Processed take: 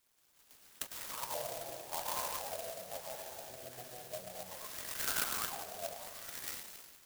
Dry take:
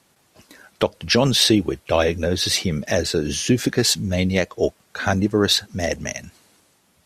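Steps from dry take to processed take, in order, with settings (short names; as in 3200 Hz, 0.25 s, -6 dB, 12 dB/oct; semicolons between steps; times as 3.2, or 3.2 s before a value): passive tone stack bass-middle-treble 10-0-10; split-band echo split 700 Hz, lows 0.152 s, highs 0.101 s, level -8.5 dB; flange 0.76 Hz, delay 5.7 ms, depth 3 ms, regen -38%; limiter -20 dBFS, peak gain reduction 10 dB; plate-style reverb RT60 2.1 s, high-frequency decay 0.95×, pre-delay 0.105 s, DRR -4 dB; auto-wah 670–3500 Hz, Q 6.4, down, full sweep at -24 dBFS; clock jitter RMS 0.15 ms; gain +5 dB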